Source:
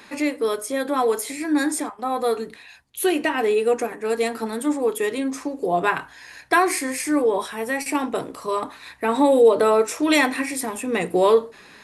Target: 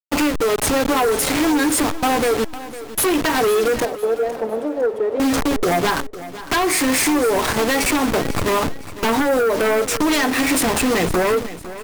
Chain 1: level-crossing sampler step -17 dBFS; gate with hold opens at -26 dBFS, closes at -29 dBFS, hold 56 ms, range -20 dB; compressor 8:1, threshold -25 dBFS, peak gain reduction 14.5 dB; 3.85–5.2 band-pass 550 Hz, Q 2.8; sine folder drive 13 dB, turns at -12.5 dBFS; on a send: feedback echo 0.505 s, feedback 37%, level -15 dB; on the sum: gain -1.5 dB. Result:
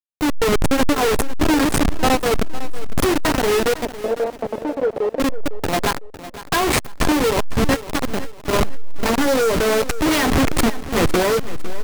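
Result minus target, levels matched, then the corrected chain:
level-crossing sampler: distortion +11 dB
level-crossing sampler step -27 dBFS; gate with hold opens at -26 dBFS, closes at -29 dBFS, hold 56 ms, range -20 dB; compressor 8:1, threshold -25 dBFS, peak gain reduction 15 dB; 3.85–5.2 band-pass 550 Hz, Q 2.8; sine folder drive 13 dB, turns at -12.5 dBFS; on a send: feedback echo 0.505 s, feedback 37%, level -15 dB; on the sum: gain -1.5 dB

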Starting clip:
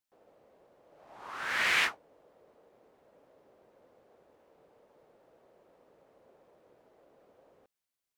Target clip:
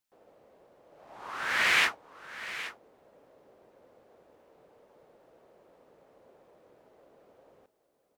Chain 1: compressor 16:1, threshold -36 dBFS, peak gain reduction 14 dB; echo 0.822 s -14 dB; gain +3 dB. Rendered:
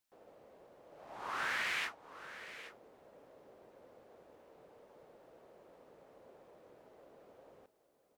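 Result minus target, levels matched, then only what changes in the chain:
compressor: peak gain reduction +14 dB
remove: compressor 16:1, threshold -36 dBFS, peak gain reduction 14 dB

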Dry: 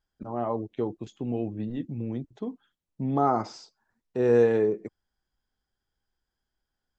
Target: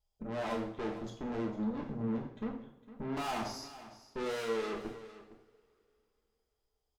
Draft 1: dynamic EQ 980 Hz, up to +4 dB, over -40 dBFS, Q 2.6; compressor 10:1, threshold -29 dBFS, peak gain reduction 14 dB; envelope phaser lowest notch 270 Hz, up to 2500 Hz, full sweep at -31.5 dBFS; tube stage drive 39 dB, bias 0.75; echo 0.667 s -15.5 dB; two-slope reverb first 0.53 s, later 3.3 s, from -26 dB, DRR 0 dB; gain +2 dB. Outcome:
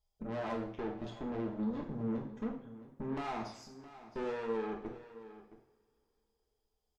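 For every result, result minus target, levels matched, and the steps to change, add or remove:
compressor: peak gain reduction +14 dB; echo 0.21 s late
remove: compressor 10:1, threshold -29 dBFS, peak gain reduction 14 dB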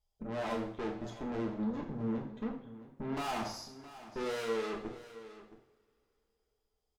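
echo 0.21 s late
change: echo 0.457 s -15.5 dB

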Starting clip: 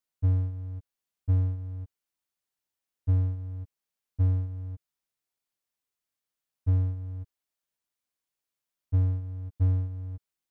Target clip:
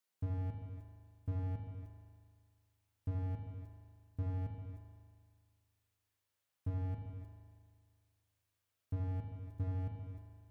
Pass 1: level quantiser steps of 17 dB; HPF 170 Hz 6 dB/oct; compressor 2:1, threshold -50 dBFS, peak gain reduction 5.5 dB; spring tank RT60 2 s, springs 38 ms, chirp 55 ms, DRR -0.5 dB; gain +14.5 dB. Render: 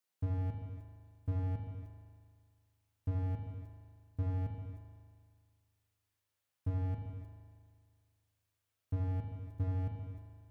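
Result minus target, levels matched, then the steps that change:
compressor: peak gain reduction -3 dB
change: compressor 2:1, threshold -56 dBFS, peak gain reduction 8.5 dB

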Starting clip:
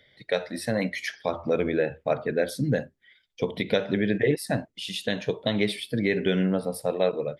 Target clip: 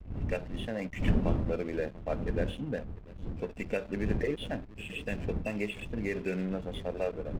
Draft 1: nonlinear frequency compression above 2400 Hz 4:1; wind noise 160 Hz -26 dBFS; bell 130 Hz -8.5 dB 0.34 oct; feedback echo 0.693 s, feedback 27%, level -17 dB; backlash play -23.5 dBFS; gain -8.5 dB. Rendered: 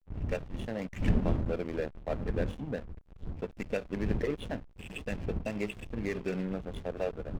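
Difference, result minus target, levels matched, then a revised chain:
backlash: distortion +7 dB
nonlinear frequency compression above 2400 Hz 4:1; wind noise 160 Hz -26 dBFS; bell 130 Hz -8.5 dB 0.34 oct; feedback echo 0.693 s, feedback 27%, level -17 dB; backlash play -31 dBFS; gain -8.5 dB

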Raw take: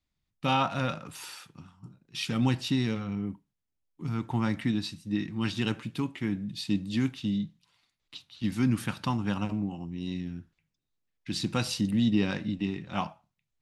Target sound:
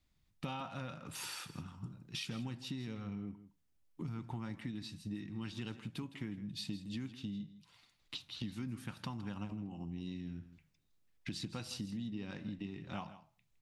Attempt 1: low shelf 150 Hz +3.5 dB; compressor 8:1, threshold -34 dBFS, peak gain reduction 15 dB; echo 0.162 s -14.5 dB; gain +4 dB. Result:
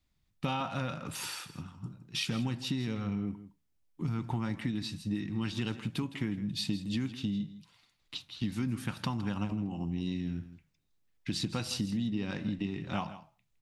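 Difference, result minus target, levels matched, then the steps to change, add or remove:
compressor: peak gain reduction -9 dB
change: compressor 8:1, threshold -44 dBFS, peak gain reduction 23.5 dB

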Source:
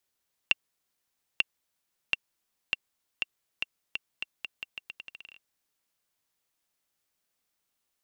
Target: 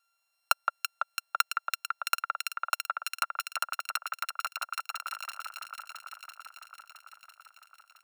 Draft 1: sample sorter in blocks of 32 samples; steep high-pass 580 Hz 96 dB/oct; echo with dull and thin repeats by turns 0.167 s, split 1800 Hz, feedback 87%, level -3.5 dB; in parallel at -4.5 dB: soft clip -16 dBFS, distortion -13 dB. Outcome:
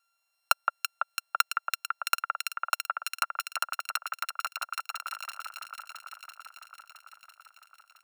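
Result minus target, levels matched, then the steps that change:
soft clip: distortion -8 dB
change: soft clip -26.5 dBFS, distortion -5 dB

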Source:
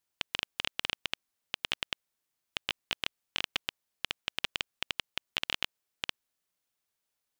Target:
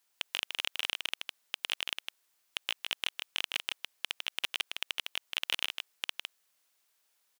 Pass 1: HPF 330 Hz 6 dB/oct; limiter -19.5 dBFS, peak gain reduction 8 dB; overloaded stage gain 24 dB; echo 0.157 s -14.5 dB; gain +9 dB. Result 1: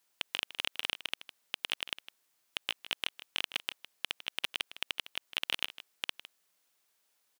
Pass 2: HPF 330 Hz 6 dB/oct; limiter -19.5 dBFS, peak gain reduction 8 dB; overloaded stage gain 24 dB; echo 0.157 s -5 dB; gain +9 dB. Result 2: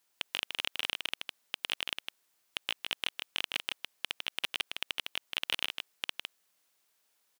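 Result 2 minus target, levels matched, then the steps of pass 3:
250 Hz band +4.5 dB
HPF 680 Hz 6 dB/oct; limiter -19.5 dBFS, peak gain reduction 7.5 dB; overloaded stage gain 24 dB; echo 0.157 s -5 dB; gain +9 dB

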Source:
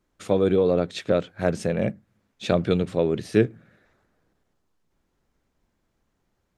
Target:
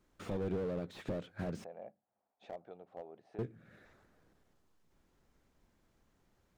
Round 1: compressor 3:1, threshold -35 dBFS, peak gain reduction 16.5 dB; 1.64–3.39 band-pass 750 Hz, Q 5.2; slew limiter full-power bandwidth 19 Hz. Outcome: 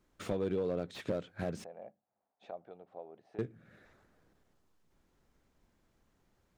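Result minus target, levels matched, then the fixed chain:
slew limiter: distortion -11 dB
compressor 3:1, threshold -35 dBFS, peak gain reduction 16.5 dB; 1.64–3.39 band-pass 750 Hz, Q 5.2; slew limiter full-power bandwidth 8 Hz

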